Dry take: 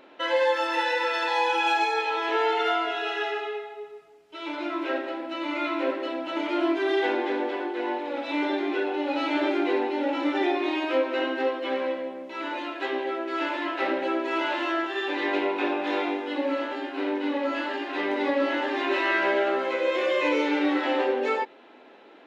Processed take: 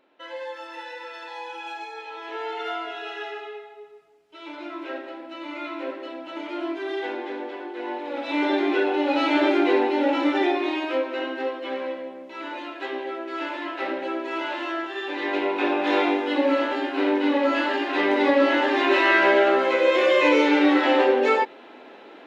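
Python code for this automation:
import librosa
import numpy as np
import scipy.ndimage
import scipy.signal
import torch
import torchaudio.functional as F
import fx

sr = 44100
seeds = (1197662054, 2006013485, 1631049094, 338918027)

y = fx.gain(x, sr, db=fx.line((1.93, -12.0), (2.75, -5.0), (7.62, -5.0), (8.58, 5.0), (10.12, 5.0), (11.15, -2.0), (15.07, -2.0), (15.98, 6.0)))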